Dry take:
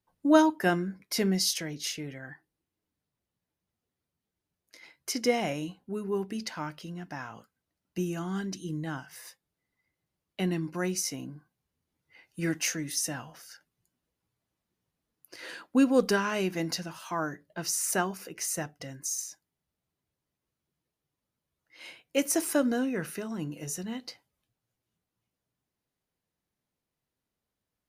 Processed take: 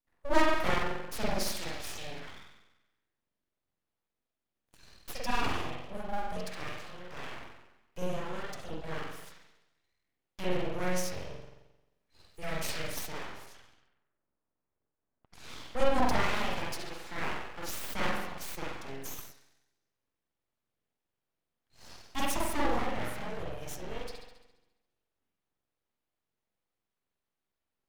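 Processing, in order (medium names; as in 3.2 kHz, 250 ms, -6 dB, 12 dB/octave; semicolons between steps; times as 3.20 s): spring tank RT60 1 s, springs 44 ms, chirp 25 ms, DRR -6.5 dB; full-wave rectifier; 13.46–15.51 s: level-controlled noise filter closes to 1.3 kHz, open at -46 dBFS; trim -6.5 dB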